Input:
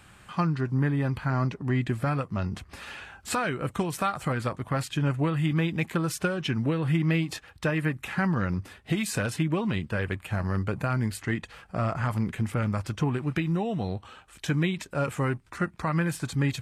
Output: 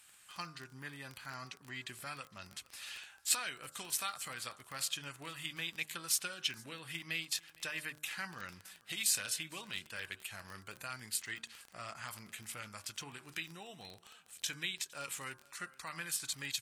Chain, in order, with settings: pre-emphasis filter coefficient 0.97; de-hum 75.78 Hz, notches 22; dynamic bell 3.9 kHz, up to +6 dB, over -56 dBFS, Q 0.81; Chebyshev shaper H 3 -21 dB, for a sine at -16.5 dBFS; crackle 19 per s -41 dBFS; on a send: delay 459 ms -24 dB; on the sum: trim +3.5 dB

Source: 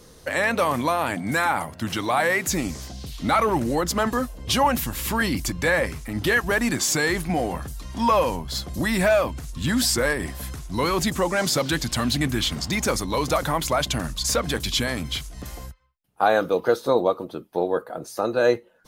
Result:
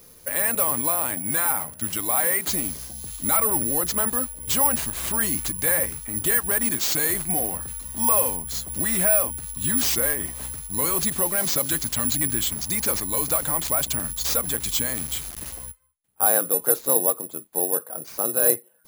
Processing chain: 14.95–15.53 s: word length cut 6-bit, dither none; careless resampling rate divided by 4×, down none, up zero stuff; trim -6.5 dB

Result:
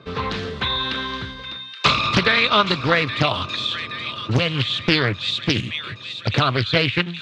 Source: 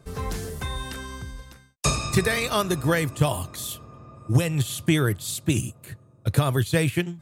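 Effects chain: cabinet simulation 130–4100 Hz, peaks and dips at 150 Hz -6 dB, 750 Hz -6 dB, 1.2 kHz +5 dB, 2.5 kHz +5 dB, 3.7 kHz +9 dB; feedback echo behind a high-pass 823 ms, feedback 57%, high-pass 2 kHz, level -10.5 dB; in parallel at -0.5 dB: compression, threshold -31 dBFS, peak gain reduction 14.5 dB; on the sum: dynamic bell 360 Hz, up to -6 dB, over -38 dBFS, Q 2.2; loudspeaker Doppler distortion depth 0.77 ms; trim +4 dB

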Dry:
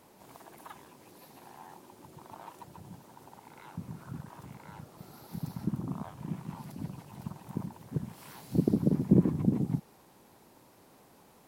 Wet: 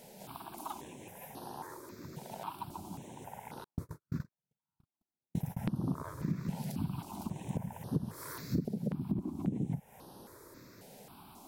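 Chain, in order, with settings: 3.64–5.59 s: gate -39 dBFS, range -55 dB; compression 16:1, threshold -36 dBFS, peak gain reduction 20 dB; stepped phaser 3.7 Hz 310–7400 Hz; trim +8 dB

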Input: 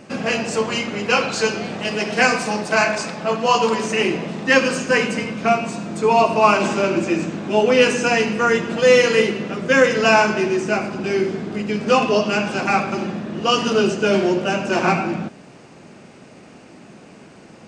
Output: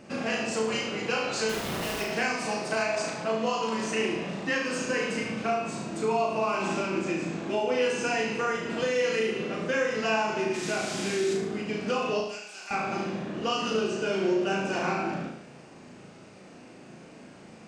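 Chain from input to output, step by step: 10.53–11.33 s: band noise 1.4–8 kHz -32 dBFS; compression, threshold -19 dBFS, peak gain reduction 10.5 dB; 1.49–2.01 s: Schmitt trigger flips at -37 dBFS; 12.20–12.71 s: differentiator; on a send: flutter echo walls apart 6.2 m, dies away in 0.64 s; on the sum: trim -7.5 dB

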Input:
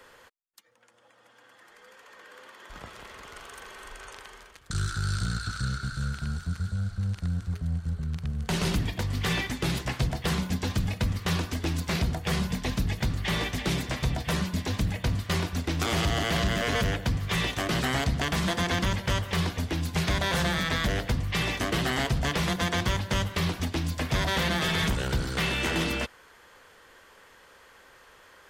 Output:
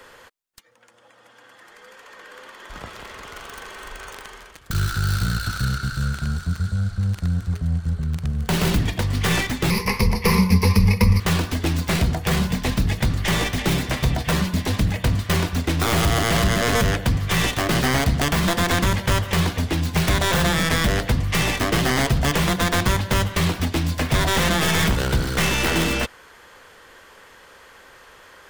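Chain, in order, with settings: tracing distortion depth 0.23 ms; 9.70–11.20 s: rippled EQ curve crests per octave 0.86, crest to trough 17 dB; trim +7 dB

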